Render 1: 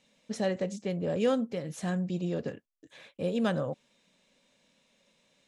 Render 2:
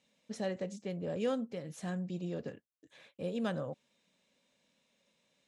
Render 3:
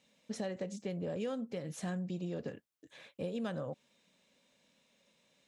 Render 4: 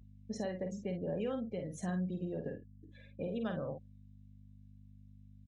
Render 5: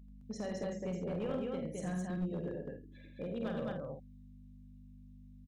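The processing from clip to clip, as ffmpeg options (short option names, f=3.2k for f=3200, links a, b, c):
-af "highpass=46,volume=-6.5dB"
-af "acompressor=threshold=-38dB:ratio=6,volume=3.5dB"
-filter_complex "[0:a]afftdn=nr=24:nf=-49,aeval=exprs='val(0)+0.002*(sin(2*PI*50*n/s)+sin(2*PI*2*50*n/s)/2+sin(2*PI*3*50*n/s)/3+sin(2*PI*4*50*n/s)/4+sin(2*PI*5*50*n/s)/5)':c=same,asplit=2[a][b];[b]adelay=49,volume=-6.5dB[c];[a][c]amix=inputs=2:normalize=0"
-af "aecho=1:1:84.55|212.8:0.447|0.794,aeval=exprs='clip(val(0),-1,0.0282)':c=same,aeval=exprs='val(0)+0.00224*(sin(2*PI*50*n/s)+sin(2*PI*2*50*n/s)/2+sin(2*PI*3*50*n/s)/3+sin(2*PI*4*50*n/s)/4+sin(2*PI*5*50*n/s)/5)':c=same,volume=-2dB"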